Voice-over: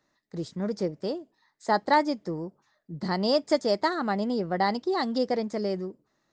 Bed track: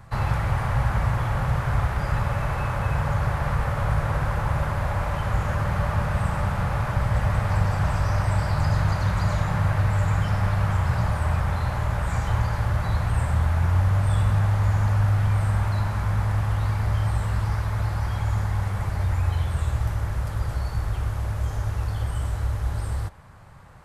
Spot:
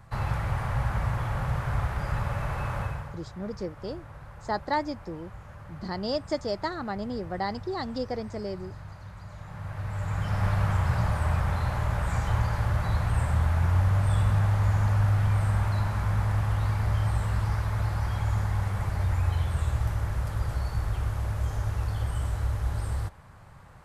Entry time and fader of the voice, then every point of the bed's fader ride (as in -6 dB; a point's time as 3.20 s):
2.80 s, -5.5 dB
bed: 2.81 s -5 dB
3.22 s -20.5 dB
9.29 s -20.5 dB
10.46 s -2.5 dB